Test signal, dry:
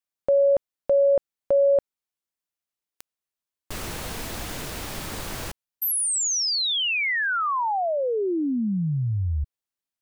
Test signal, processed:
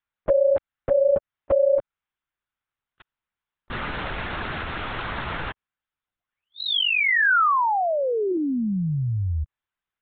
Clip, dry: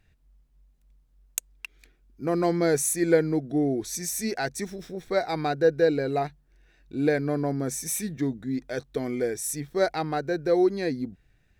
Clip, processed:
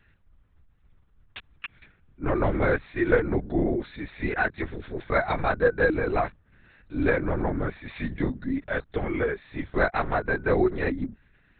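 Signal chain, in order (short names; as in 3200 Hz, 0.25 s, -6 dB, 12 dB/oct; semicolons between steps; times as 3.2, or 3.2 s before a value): bell 1400 Hz +9 dB 1.3 oct; in parallel at 0 dB: compressor 16:1, threshold -25 dBFS; on the sum: LPC vocoder at 8 kHz whisper; gain -4.5 dB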